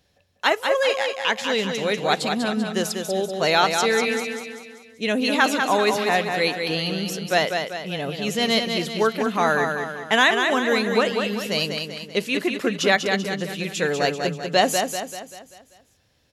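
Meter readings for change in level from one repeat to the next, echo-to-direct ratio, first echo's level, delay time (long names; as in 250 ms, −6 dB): −6.5 dB, −4.5 dB, −5.5 dB, 194 ms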